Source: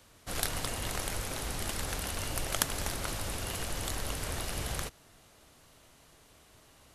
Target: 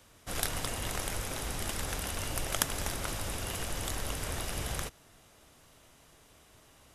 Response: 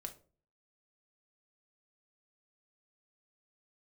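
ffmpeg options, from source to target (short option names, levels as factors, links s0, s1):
-af "bandreject=f=4300:w=14"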